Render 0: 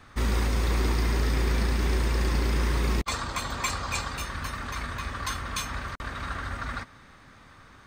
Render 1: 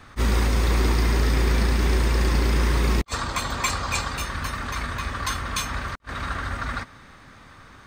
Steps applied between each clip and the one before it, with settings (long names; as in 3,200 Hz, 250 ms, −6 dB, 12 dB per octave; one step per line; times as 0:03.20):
level that may rise only so fast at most 480 dB per second
level +4.5 dB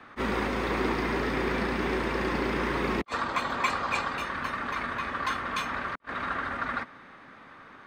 three-way crossover with the lows and the highs turned down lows −19 dB, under 180 Hz, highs −17 dB, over 3,200 Hz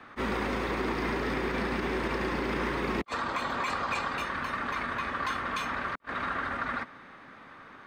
brickwall limiter −21.5 dBFS, peak gain reduction 8 dB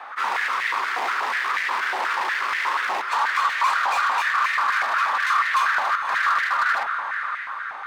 feedback delay with all-pass diffusion 568 ms, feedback 41%, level −9.5 dB
hard clipping −32 dBFS, distortion −9 dB
high-pass on a step sequencer 8.3 Hz 800–1,900 Hz
level +7.5 dB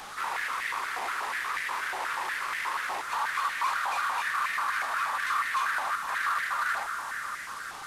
linear delta modulator 64 kbit/s, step −28.5 dBFS
level −8 dB